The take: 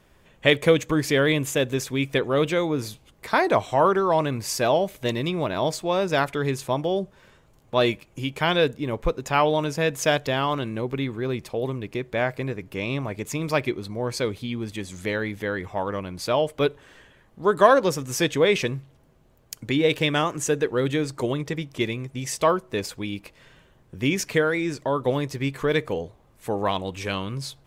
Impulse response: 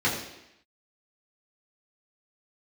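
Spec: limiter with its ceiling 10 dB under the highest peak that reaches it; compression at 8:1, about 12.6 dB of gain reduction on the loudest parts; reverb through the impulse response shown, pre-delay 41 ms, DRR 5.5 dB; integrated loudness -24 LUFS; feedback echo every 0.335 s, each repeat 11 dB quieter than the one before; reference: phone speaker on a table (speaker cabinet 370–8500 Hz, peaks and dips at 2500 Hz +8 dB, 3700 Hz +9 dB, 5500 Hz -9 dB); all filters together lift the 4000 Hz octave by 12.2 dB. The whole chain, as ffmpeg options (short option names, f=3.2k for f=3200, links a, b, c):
-filter_complex "[0:a]equalizer=f=4k:t=o:g=7,acompressor=threshold=-24dB:ratio=8,alimiter=limit=-19.5dB:level=0:latency=1,aecho=1:1:335|670|1005:0.282|0.0789|0.0221,asplit=2[a][b];[1:a]atrim=start_sample=2205,adelay=41[c];[b][c]afir=irnorm=-1:irlink=0,volume=-19dB[d];[a][d]amix=inputs=2:normalize=0,highpass=f=370:w=0.5412,highpass=f=370:w=1.3066,equalizer=f=2.5k:t=q:w=4:g=8,equalizer=f=3.7k:t=q:w=4:g=9,equalizer=f=5.5k:t=q:w=4:g=-9,lowpass=f=8.5k:w=0.5412,lowpass=f=8.5k:w=1.3066,volume=4dB"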